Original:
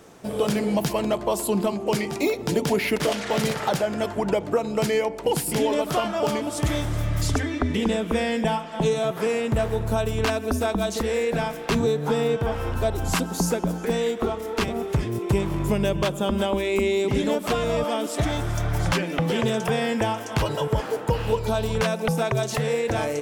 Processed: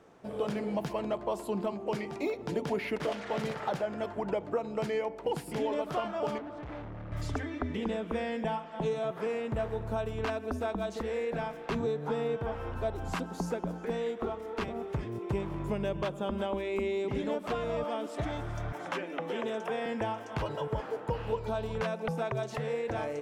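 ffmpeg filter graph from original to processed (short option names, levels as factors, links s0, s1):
-filter_complex "[0:a]asettb=1/sr,asplit=3[s0][s1][s2];[s0]atrim=end=6.384[s3];[s1]atrim=start=6.38:end=7.12,asetpts=PTS-STARTPTS,afade=t=in:d=0.004:c=qsin,afade=t=out:st=0.736:d=0.004:c=qsin,lowpass=2000,asoftclip=type=hard:threshold=0.0335[s4];[s2]atrim=start=7.116[s5];[s3][s4]acrossfade=d=0.004:c1=hsin:c2=qsin[s6];[s6][s5]acrossfade=d=0.004:c1=qsin:c2=hsin,asettb=1/sr,asplit=3[s7][s8][s9];[s7]atrim=end=18.724[s10];[s8]atrim=start=18.72:end=19.86,asetpts=PTS-STARTPTS,afade=t=in:d=0.004:c=qsin,afade=t=out:st=1.136:d=0.004:c=qsin,highpass=f=230:w=0.5412,highpass=f=230:w=1.3066,equalizer=f=4600:t=o:w=0.22:g=-7[s11];[s9]atrim=start=19.856[s12];[s10][s11]acrossfade=d=0.004:c1=hsin:c2=qsin[s13];[s13][s12]acrossfade=d=0.004:c1=qsin:c2=hsin,lowpass=f=1300:p=1,lowshelf=f=460:g=-6.5,volume=0.562"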